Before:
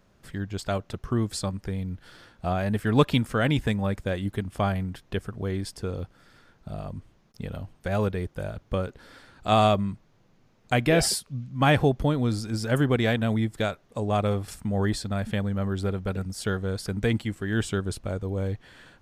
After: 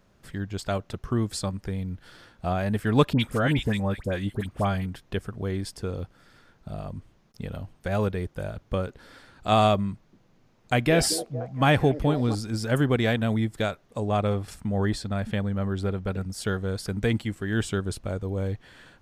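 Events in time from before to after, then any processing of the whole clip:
3.13–4.86 dispersion highs, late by 68 ms, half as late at 1600 Hz
9.9–12.35 delay with a stepping band-pass 0.228 s, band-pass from 360 Hz, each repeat 0.7 oct, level -9.5 dB
14.09–16.32 high shelf 6800 Hz -6 dB

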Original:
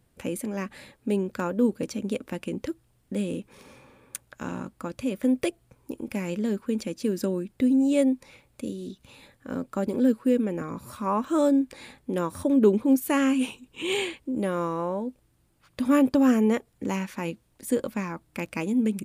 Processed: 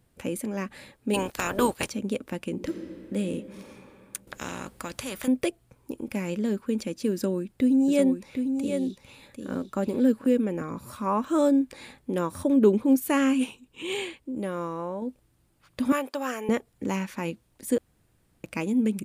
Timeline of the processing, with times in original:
1.13–1.88 spectral limiter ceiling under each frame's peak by 26 dB
2.52–3.17 reverb throw, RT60 2.8 s, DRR 4.5 dB
4.27–5.28 spectral compressor 2:1
7.13–10.27 echo 0.75 s -6.5 dB
13.44–15.02 gain -4 dB
15.92–16.49 HPF 690 Hz
17.78–18.44 room tone

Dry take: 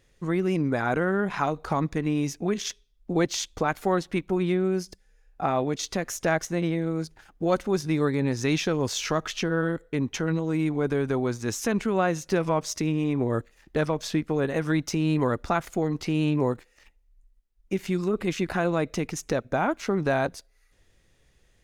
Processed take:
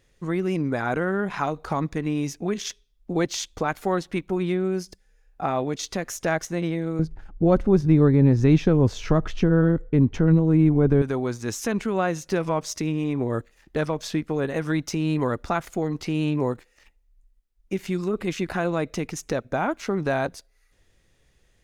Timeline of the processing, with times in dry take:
6.99–11.02 tilt -4 dB/oct

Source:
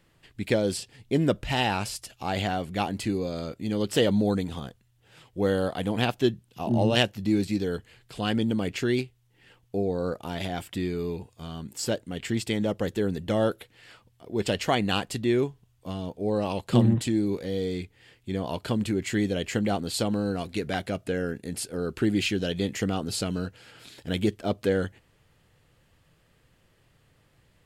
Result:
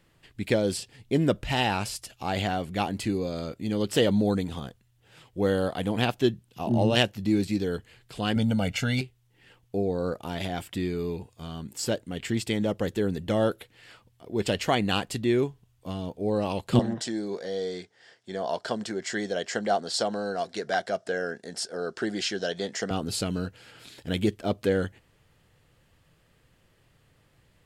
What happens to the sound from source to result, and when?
8.36–9.01 comb 1.4 ms, depth 100%
16.79–22.91 speaker cabinet 280–8700 Hz, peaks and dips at 290 Hz -8 dB, 680 Hz +8 dB, 1600 Hz +6 dB, 2500 Hz -10 dB, 5400 Hz +9 dB

